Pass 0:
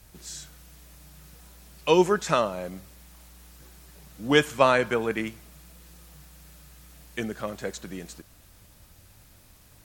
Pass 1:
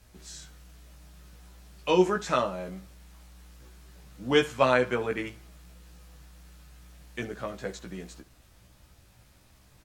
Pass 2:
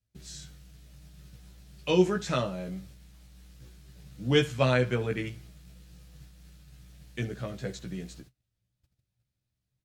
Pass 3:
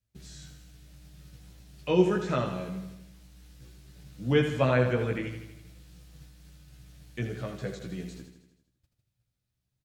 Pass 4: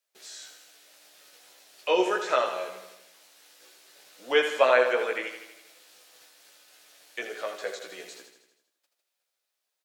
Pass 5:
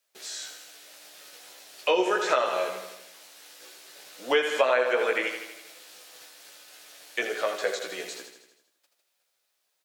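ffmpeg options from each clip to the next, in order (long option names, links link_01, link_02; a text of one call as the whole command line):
ffmpeg -i in.wav -af "highshelf=frequency=9500:gain=-11,aecho=1:1:16|68:0.668|0.133,volume=-4dB" out.wav
ffmpeg -i in.wav -af "agate=range=-28dB:threshold=-51dB:ratio=16:detection=peak,equalizer=frequency=125:width_type=o:width=1:gain=12,equalizer=frequency=1000:width_type=o:width=1:gain=-7,equalizer=frequency=4000:width_type=o:width=1:gain=3,volume=-1.5dB" out.wav
ffmpeg -i in.wav -filter_complex "[0:a]acrossover=split=2600[link_01][link_02];[link_02]acompressor=threshold=-48dB:ratio=4:attack=1:release=60[link_03];[link_01][link_03]amix=inputs=2:normalize=0,aecho=1:1:80|160|240|320|400|480|560:0.376|0.218|0.126|0.0733|0.0425|0.0247|0.0143" out.wav
ffmpeg -i in.wav -af "highpass=frequency=490:width=0.5412,highpass=frequency=490:width=1.3066,volume=7dB" out.wav
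ffmpeg -i in.wav -af "acompressor=threshold=-27dB:ratio=4,volume=6.5dB" out.wav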